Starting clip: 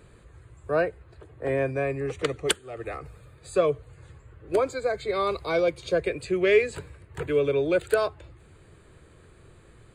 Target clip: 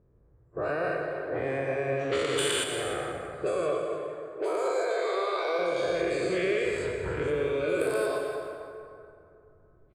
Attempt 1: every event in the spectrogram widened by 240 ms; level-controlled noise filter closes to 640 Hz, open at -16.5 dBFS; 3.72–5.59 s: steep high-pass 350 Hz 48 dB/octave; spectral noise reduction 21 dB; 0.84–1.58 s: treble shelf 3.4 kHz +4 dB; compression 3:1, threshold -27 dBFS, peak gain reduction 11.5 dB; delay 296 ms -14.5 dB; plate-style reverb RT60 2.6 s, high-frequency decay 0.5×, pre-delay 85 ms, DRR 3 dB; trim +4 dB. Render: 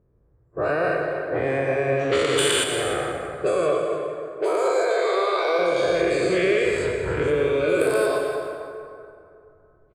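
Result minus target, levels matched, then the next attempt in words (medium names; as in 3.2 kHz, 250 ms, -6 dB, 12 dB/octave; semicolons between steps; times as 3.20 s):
compression: peak gain reduction -7 dB
every event in the spectrogram widened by 240 ms; level-controlled noise filter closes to 640 Hz, open at -16.5 dBFS; 3.72–5.59 s: steep high-pass 350 Hz 48 dB/octave; spectral noise reduction 21 dB; 0.84–1.58 s: treble shelf 3.4 kHz +4 dB; compression 3:1, threshold -37.5 dBFS, peak gain reduction 18.5 dB; delay 296 ms -14.5 dB; plate-style reverb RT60 2.6 s, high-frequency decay 0.5×, pre-delay 85 ms, DRR 3 dB; trim +4 dB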